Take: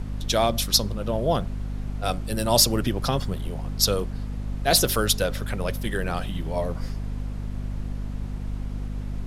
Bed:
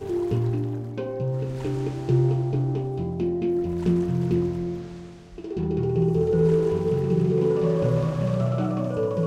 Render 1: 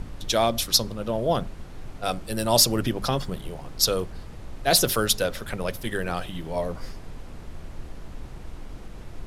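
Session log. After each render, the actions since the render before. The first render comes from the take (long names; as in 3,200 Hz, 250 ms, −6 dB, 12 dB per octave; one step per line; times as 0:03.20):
mains-hum notches 50/100/150/200/250 Hz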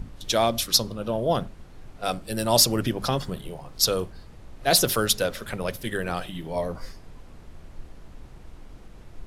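noise reduction from a noise print 6 dB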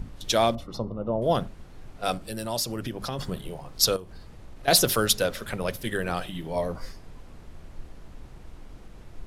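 0:00.55–0:01.22: Savitzky-Golay smoothing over 65 samples
0:02.17–0:03.19: downward compressor 2 to 1, threshold −33 dBFS
0:03.96–0:04.68: downward compressor 5 to 1, threshold −37 dBFS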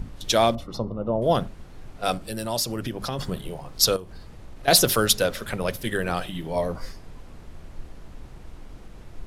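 level +2.5 dB
brickwall limiter −1 dBFS, peak gain reduction 0.5 dB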